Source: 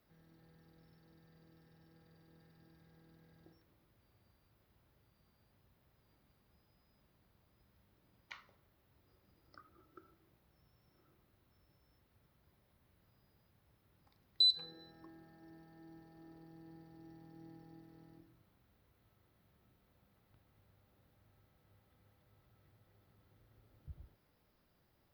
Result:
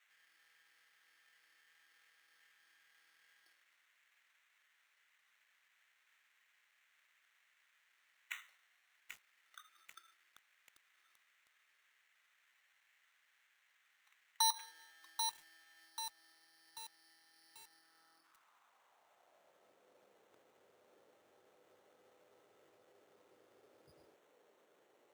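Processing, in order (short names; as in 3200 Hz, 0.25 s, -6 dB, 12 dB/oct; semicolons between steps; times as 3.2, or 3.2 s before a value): 15.89–18.24 high shelf 3300 Hz -11.5 dB; sample-and-hold 9×; high-pass sweep 1900 Hz -> 440 Hz, 17.54–19.94; lo-fi delay 0.788 s, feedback 55%, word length 9-bit, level -5 dB; gain +3 dB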